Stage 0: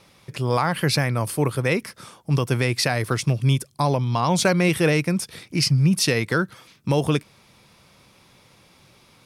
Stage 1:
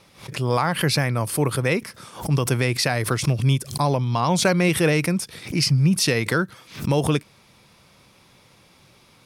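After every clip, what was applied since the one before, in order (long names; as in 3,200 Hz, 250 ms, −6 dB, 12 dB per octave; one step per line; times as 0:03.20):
background raised ahead of every attack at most 140 dB per second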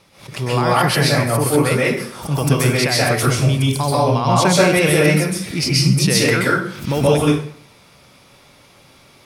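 dense smooth reverb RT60 0.56 s, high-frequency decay 0.8×, pre-delay 115 ms, DRR −5.5 dB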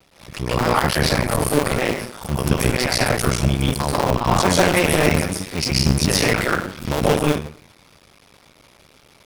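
sub-harmonics by changed cycles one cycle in 2, muted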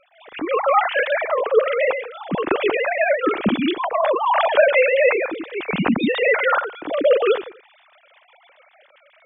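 three sine waves on the formant tracks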